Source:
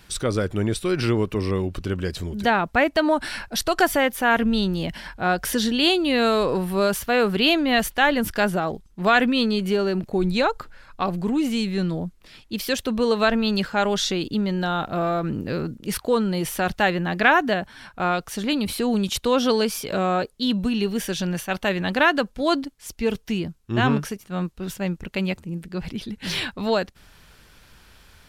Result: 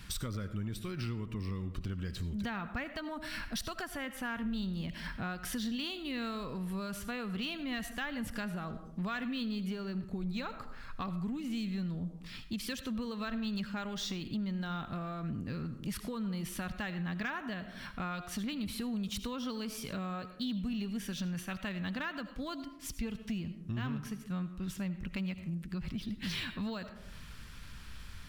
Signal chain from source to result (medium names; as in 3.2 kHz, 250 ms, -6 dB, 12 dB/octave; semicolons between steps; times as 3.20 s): bass shelf 320 Hz +5 dB; band-stop 1.5 kHz, Q 28; algorithmic reverb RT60 0.56 s, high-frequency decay 0.45×, pre-delay 40 ms, DRR 13 dB; compression 4:1, threshold -35 dBFS, peak gain reduction 19.5 dB; high-order bell 520 Hz -8.5 dB; saturation -25.5 dBFS, distortion -26 dB; decimation joined by straight lines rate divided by 2×